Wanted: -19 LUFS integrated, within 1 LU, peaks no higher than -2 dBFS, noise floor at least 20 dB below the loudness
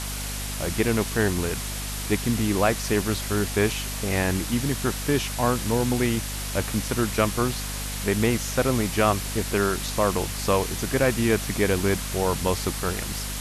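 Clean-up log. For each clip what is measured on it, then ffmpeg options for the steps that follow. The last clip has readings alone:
hum 50 Hz; harmonics up to 250 Hz; hum level -31 dBFS; noise floor -31 dBFS; noise floor target -45 dBFS; loudness -24.5 LUFS; peak -7.5 dBFS; loudness target -19.0 LUFS
-> -af "bandreject=f=50:t=h:w=6,bandreject=f=100:t=h:w=6,bandreject=f=150:t=h:w=6,bandreject=f=200:t=h:w=6,bandreject=f=250:t=h:w=6"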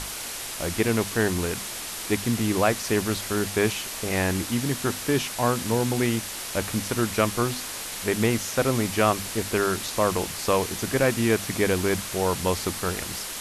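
hum none; noise floor -35 dBFS; noise floor target -45 dBFS
-> -af "afftdn=nr=10:nf=-35"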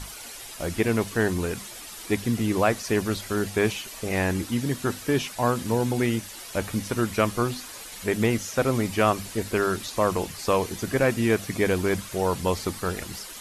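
noise floor -41 dBFS; noise floor target -46 dBFS
-> -af "afftdn=nr=6:nf=-41"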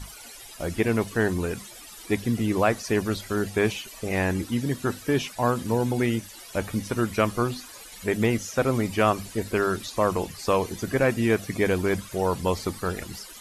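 noise floor -44 dBFS; noise floor target -46 dBFS
-> -af "afftdn=nr=6:nf=-44"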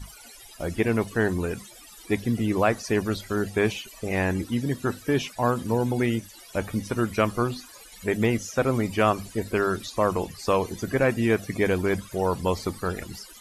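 noise floor -48 dBFS; loudness -26.0 LUFS; peak -7.5 dBFS; loudness target -19.0 LUFS
-> -af "volume=7dB,alimiter=limit=-2dB:level=0:latency=1"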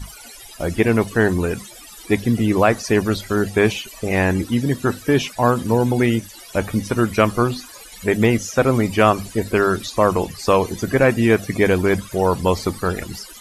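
loudness -19.0 LUFS; peak -2.0 dBFS; noise floor -41 dBFS

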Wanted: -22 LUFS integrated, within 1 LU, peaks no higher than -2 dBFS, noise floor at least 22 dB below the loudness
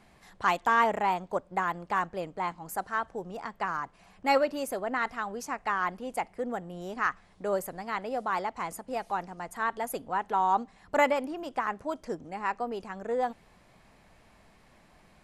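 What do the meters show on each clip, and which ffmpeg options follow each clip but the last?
loudness -31.0 LUFS; peak -11.5 dBFS; loudness target -22.0 LUFS
-> -af "volume=9dB"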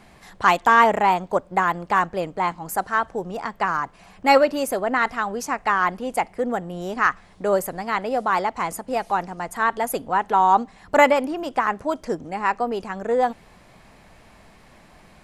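loudness -22.0 LUFS; peak -2.5 dBFS; noise floor -51 dBFS

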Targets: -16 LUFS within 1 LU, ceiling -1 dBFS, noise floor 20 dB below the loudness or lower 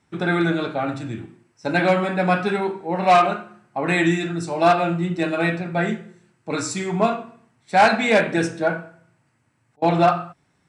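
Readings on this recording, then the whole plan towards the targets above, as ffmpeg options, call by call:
loudness -21.0 LUFS; peak -3.5 dBFS; loudness target -16.0 LUFS
-> -af "volume=5dB,alimiter=limit=-1dB:level=0:latency=1"

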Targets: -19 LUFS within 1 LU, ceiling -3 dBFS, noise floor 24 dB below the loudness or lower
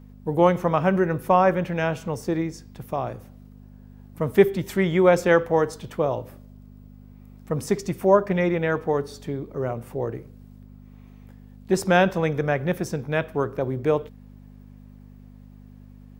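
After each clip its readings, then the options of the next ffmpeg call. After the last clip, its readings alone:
hum 50 Hz; harmonics up to 250 Hz; hum level -45 dBFS; loudness -23.5 LUFS; peak -3.0 dBFS; loudness target -19.0 LUFS
-> -af "bandreject=f=50:t=h:w=4,bandreject=f=100:t=h:w=4,bandreject=f=150:t=h:w=4,bandreject=f=200:t=h:w=4,bandreject=f=250:t=h:w=4"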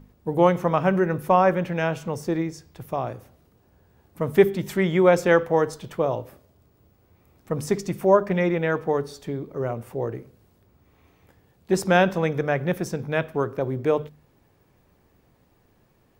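hum none; loudness -23.5 LUFS; peak -3.0 dBFS; loudness target -19.0 LUFS
-> -af "volume=4.5dB,alimiter=limit=-3dB:level=0:latency=1"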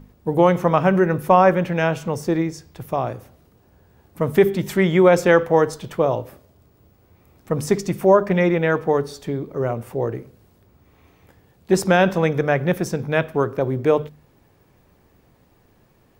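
loudness -19.5 LUFS; peak -3.0 dBFS; noise floor -58 dBFS

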